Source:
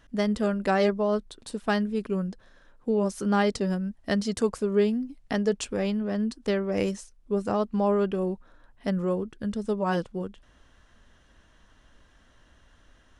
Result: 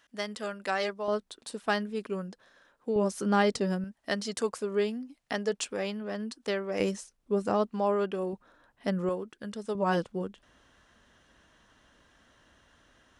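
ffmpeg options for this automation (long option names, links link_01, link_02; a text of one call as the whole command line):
ffmpeg -i in.wav -af "asetnsamples=nb_out_samples=441:pad=0,asendcmd='1.08 highpass f 480;2.96 highpass f 190;3.84 highpass f 590;6.8 highpass f 180;7.69 highpass f 480;8.33 highpass f 210;9.09 highpass f 600;9.75 highpass f 150',highpass=frequency=1300:poles=1" out.wav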